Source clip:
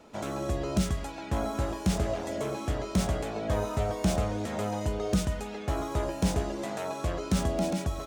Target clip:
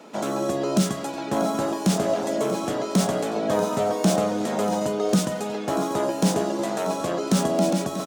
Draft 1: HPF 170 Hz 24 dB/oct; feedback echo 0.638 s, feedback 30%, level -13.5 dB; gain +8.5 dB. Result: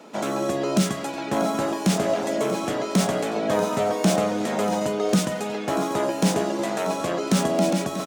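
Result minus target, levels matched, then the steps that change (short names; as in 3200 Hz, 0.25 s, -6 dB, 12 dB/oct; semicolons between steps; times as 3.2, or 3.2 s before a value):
2000 Hz band +3.0 dB
add after HPF: dynamic EQ 2200 Hz, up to -5 dB, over -55 dBFS, Q 1.4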